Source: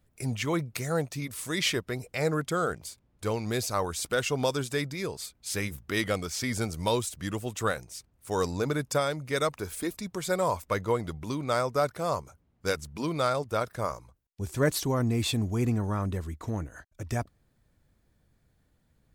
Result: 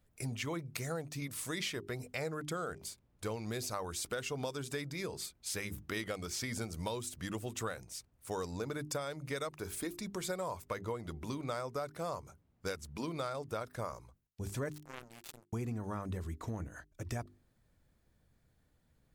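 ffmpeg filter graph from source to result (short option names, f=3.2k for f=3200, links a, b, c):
-filter_complex "[0:a]asettb=1/sr,asplit=3[a][b][c];[a]atrim=end=14.724[d];[b]atrim=start=14.72:end=15.53,asetpts=PTS-STARTPTS,afade=t=in:d=0.004:c=qsin,afade=t=out:st=0.806:d=0.004:c=qsin,lowshelf=f=62:g=-10.5,acompressor=threshold=-32dB:ratio=2:attack=3.2:release=140:knee=1:detection=peak,acrusher=bits=3:mix=0:aa=0.5[e];[c]atrim=start=15.526[f];[d][e]acrossfade=d=0.004:c1=hsin:c2=qsin[g];[g][f]acrossfade=d=0.004:c1=qsin:c2=hsin,bandreject=f=50:t=h:w=6,bandreject=f=100:t=h:w=6,bandreject=f=150:t=h:w=6,bandreject=f=200:t=h:w=6,bandreject=f=250:t=h:w=6,bandreject=f=300:t=h:w=6,bandreject=f=350:t=h:w=6,bandreject=f=400:t=h:w=6,acompressor=threshold=-32dB:ratio=6,volume=-3dB"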